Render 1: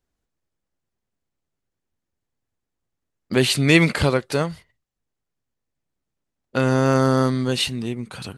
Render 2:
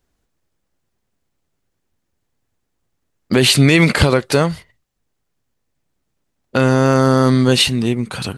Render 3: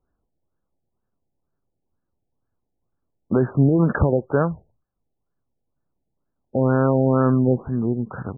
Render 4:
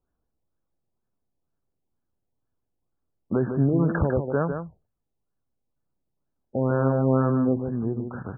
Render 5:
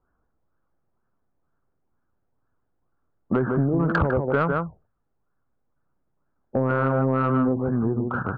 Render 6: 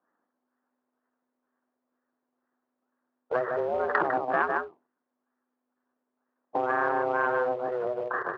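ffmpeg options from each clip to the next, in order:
-af "alimiter=level_in=10.5dB:limit=-1dB:release=50:level=0:latency=1,volume=-1dB"
-af "afftfilt=real='re*lt(b*sr/1024,850*pow(1800/850,0.5+0.5*sin(2*PI*2.1*pts/sr)))':imag='im*lt(b*sr/1024,850*pow(1800/850,0.5+0.5*sin(2*PI*2.1*pts/sr)))':win_size=1024:overlap=0.75,volume=-4.5dB"
-filter_complex "[0:a]asplit=2[a][b];[b]adelay=151.6,volume=-7dB,highshelf=f=4k:g=-3.41[c];[a][c]amix=inputs=2:normalize=0,volume=-5dB"
-af "acompressor=threshold=-23dB:ratio=12,lowpass=f=1.4k:t=q:w=3,asoftclip=type=tanh:threshold=-17.5dB,volume=6dB"
-filter_complex "[0:a]asplit=2[a][b];[b]acrusher=bits=3:mode=log:mix=0:aa=0.000001,volume=-10.5dB[c];[a][c]amix=inputs=2:normalize=0,aeval=exprs='val(0)*sin(2*PI*250*n/s)':c=same,highpass=500,lowpass=2.5k"

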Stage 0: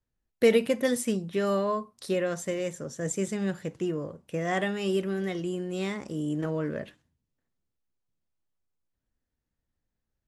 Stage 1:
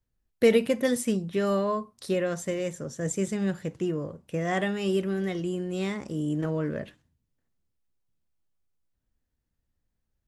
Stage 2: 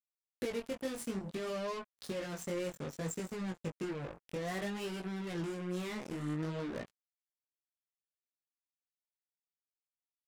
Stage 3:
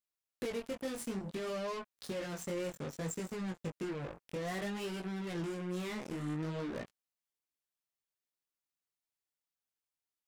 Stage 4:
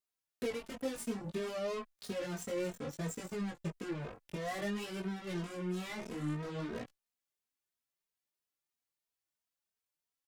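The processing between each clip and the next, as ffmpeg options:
-af "lowshelf=f=160:g=5.5"
-af "acompressor=threshold=-31dB:ratio=6,acrusher=bits=5:mix=0:aa=0.5,flanger=delay=16.5:depth=6.3:speed=0.59,volume=-1.5dB"
-af "asoftclip=type=tanh:threshold=-30.5dB,volume=1dB"
-filter_complex "[0:a]asplit=2[a][b];[b]adelay=2.9,afreqshift=3[c];[a][c]amix=inputs=2:normalize=1,volume=3dB"

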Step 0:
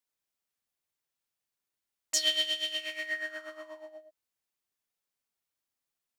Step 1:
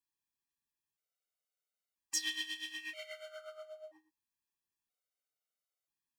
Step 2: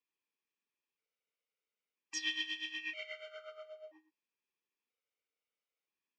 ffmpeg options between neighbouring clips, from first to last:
-af "afftfilt=real='re*gt(sin(2*PI*0.51*pts/sr)*(1-2*mod(floor(b*sr/1024/390),2)),0)':imag='im*gt(sin(2*PI*0.51*pts/sr)*(1-2*mod(floor(b*sr/1024/390),2)),0)':win_size=1024:overlap=0.75,volume=-3dB"
-af "highpass=f=190:w=0.5412,highpass=f=190:w=1.3066,equalizer=f=450:t=q:w=4:g=8,equalizer=f=710:t=q:w=4:g=-8,equalizer=f=1.6k:t=q:w=4:g=-4,equalizer=f=2.4k:t=q:w=4:g=7,equalizer=f=4.2k:t=q:w=4:g=-7,lowpass=f=5.1k:w=0.5412,lowpass=f=5.1k:w=1.3066,volume=1.5dB"

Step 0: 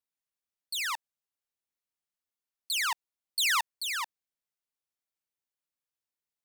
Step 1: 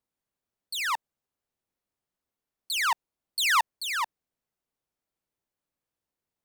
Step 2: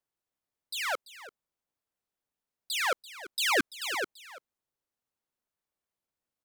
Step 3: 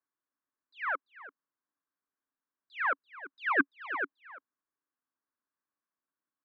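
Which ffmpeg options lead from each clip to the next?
-af "tiltshelf=f=1.2k:g=6.5,volume=6dB"
-af "aecho=1:1:338:0.158,aeval=exprs='val(0)*sin(2*PI*510*n/s+510*0.25/0.55*sin(2*PI*0.55*n/s))':c=same"
-af "highpass=190,equalizer=f=280:t=q:w=4:g=9,equalizer=f=500:t=q:w=4:g=-4,equalizer=f=740:t=q:w=4:g=-4,equalizer=f=1.1k:t=q:w=4:g=9,equalizer=f=1.6k:t=q:w=4:g=8,lowpass=f=2k:w=0.5412,lowpass=f=2k:w=1.3066,volume=-4.5dB"

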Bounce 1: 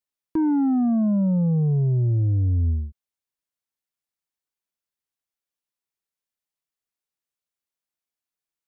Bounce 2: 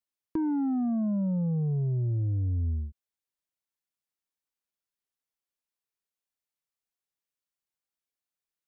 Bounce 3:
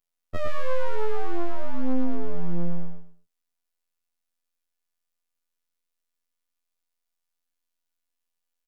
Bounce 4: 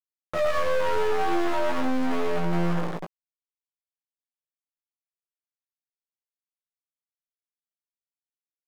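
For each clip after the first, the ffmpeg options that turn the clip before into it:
-af "acompressor=threshold=-23dB:ratio=6,volume=-3.5dB"
-af "aeval=exprs='abs(val(0))':c=same,afftfilt=real='hypot(re,im)*cos(PI*b)':imag='0':win_size=2048:overlap=0.75,aecho=1:1:112|224|336:0.596|0.149|0.0372,volume=8dB"
-filter_complex "[0:a]acrusher=bits=5:mix=0:aa=0.000001,asplit=2[a][b];[b]highpass=f=720:p=1,volume=31dB,asoftclip=type=tanh:threshold=-9.5dB[c];[a][c]amix=inputs=2:normalize=0,lowpass=f=1.2k:p=1,volume=-6dB,asplit=2[d][e];[e]adelay=18,volume=-5.5dB[f];[d][f]amix=inputs=2:normalize=0,volume=-7dB"

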